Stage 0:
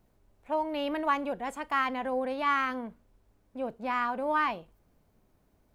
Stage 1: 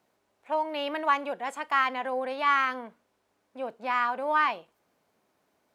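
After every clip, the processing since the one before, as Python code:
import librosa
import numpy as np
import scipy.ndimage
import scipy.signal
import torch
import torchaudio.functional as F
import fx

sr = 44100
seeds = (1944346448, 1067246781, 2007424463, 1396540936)

y = fx.weighting(x, sr, curve='A')
y = F.gain(torch.from_numpy(y), 3.0).numpy()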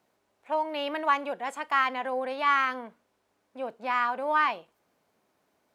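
y = x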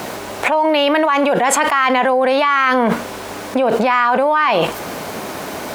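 y = fx.env_flatten(x, sr, amount_pct=100)
y = F.gain(torch.from_numpy(y), 5.5).numpy()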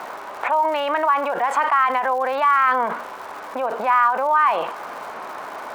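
y = fx.bandpass_q(x, sr, hz=1100.0, q=1.7)
y = fx.dmg_crackle(y, sr, seeds[0], per_s=240.0, level_db=-33.0)
y = fx.end_taper(y, sr, db_per_s=100.0)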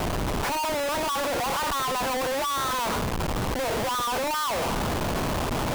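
y = fx.schmitt(x, sr, flips_db=-30.5)
y = F.gain(torch.from_numpy(y), -5.5).numpy()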